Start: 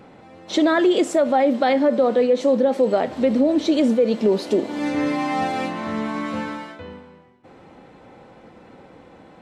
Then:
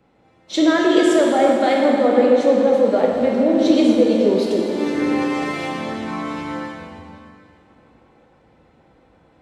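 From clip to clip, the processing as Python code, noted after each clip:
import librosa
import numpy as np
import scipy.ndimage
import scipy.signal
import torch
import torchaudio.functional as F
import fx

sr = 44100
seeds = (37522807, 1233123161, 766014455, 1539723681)

y = fx.rev_plate(x, sr, seeds[0], rt60_s=3.6, hf_ratio=0.85, predelay_ms=0, drr_db=-2.5)
y = fx.band_widen(y, sr, depth_pct=40)
y = y * librosa.db_to_amplitude(-1.5)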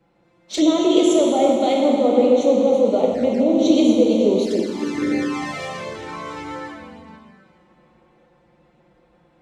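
y = fx.dynamic_eq(x, sr, hz=6400.0, q=1.5, threshold_db=-49.0, ratio=4.0, max_db=6)
y = fx.env_flanger(y, sr, rest_ms=5.9, full_db=-13.5)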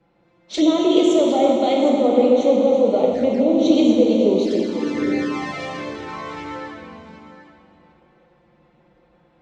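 y = scipy.signal.sosfilt(scipy.signal.butter(2, 5600.0, 'lowpass', fs=sr, output='sos'), x)
y = y + 10.0 ** (-13.5 / 20.0) * np.pad(y, (int(760 * sr / 1000.0), 0))[:len(y)]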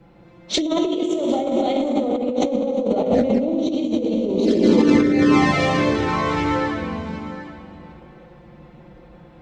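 y = fx.over_compress(x, sr, threshold_db=-24.0, ratio=-1.0)
y = fx.low_shelf(y, sr, hz=210.0, db=9.5)
y = y * librosa.db_to_amplitude(2.5)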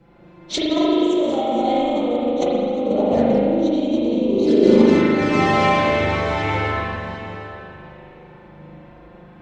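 y = fx.rev_spring(x, sr, rt60_s=1.9, pass_ms=(39,), chirp_ms=50, drr_db=-5.0)
y = y * librosa.db_to_amplitude(-3.0)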